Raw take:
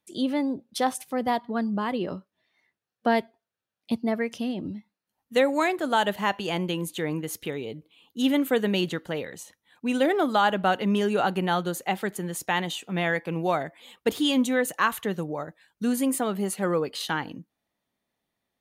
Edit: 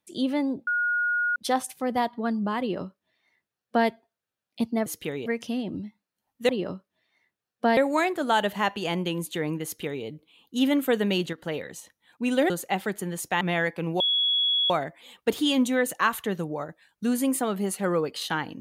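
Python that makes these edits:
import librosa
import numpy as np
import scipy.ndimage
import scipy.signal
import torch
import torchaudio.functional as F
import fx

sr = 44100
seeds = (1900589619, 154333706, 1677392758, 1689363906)

y = fx.edit(x, sr, fx.insert_tone(at_s=0.67, length_s=0.69, hz=1440.0, db=-22.0),
    fx.duplicate(start_s=1.91, length_s=1.28, to_s=5.4),
    fx.duplicate(start_s=7.27, length_s=0.4, to_s=4.17),
    fx.fade_down_up(start_s=8.65, length_s=0.67, db=-8.5, fade_s=0.31, curve='log'),
    fx.cut(start_s=10.13, length_s=1.54),
    fx.cut(start_s=12.58, length_s=0.32),
    fx.insert_tone(at_s=13.49, length_s=0.7, hz=3360.0, db=-20.5), tone=tone)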